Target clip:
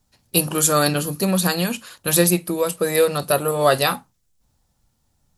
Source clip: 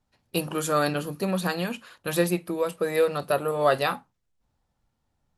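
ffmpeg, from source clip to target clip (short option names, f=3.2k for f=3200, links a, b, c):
-af "bass=f=250:g=4,treble=f=4k:g=12,volume=4.5dB"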